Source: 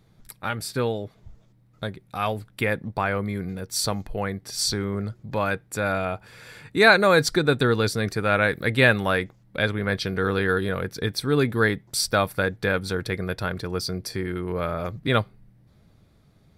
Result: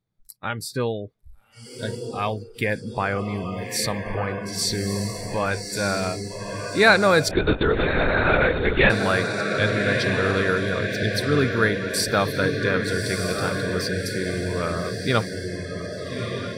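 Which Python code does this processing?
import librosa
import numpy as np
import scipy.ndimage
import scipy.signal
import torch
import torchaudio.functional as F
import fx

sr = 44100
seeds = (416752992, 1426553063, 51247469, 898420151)

y = fx.echo_diffused(x, sr, ms=1223, feedback_pct=57, wet_db=-4.5)
y = fx.noise_reduce_blind(y, sr, reduce_db=22)
y = fx.lpc_vocoder(y, sr, seeds[0], excitation='whisper', order=10, at=(7.31, 8.9))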